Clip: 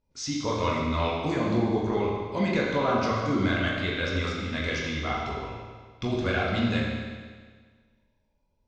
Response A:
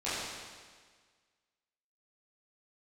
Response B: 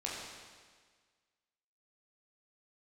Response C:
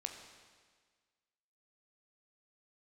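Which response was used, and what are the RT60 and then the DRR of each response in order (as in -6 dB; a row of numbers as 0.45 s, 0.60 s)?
B; 1.6 s, 1.6 s, 1.6 s; -13.0 dB, -5.0 dB, 4.0 dB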